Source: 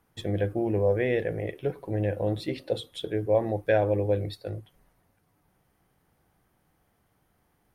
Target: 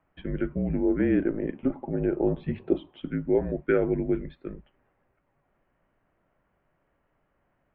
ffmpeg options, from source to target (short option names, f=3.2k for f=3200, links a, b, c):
-filter_complex "[0:a]asettb=1/sr,asplit=3[a][b][c];[a]atrim=end=0.994[d];[b]atrim=start=0.99:end=3.01,asetpts=PTS-STARTPTS,afade=t=in:d=0.004:c=qsin,afade=t=out:st=2.016:d=0.004:c=qsin,equalizer=f=125:t=o:w=1:g=-4,equalizer=f=500:t=o:w=1:g=3,equalizer=f=1k:t=o:w=1:g=10,equalizer=f=2k:t=o:w=1:g=-7[e];[c]atrim=start=3.006[f];[d][e]acrossfade=d=0.004:c1=hsin:c2=qsin[g];[g][f]acrossfade=d=0.004:c1=qsin:c2=hsin,highpass=f=150:t=q:w=0.5412,highpass=f=150:t=q:w=1.307,lowpass=f=2.8k:t=q:w=0.5176,lowpass=f=2.8k:t=q:w=0.7071,lowpass=f=2.8k:t=q:w=1.932,afreqshift=-160"